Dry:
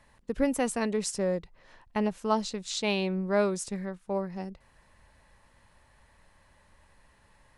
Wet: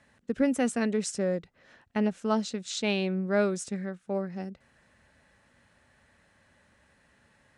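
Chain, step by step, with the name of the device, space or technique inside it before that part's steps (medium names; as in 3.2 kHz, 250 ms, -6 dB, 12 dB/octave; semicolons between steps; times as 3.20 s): car door speaker (cabinet simulation 88–9200 Hz, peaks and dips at 240 Hz +5 dB, 980 Hz -9 dB, 1.5 kHz +4 dB, 4.6 kHz -3 dB)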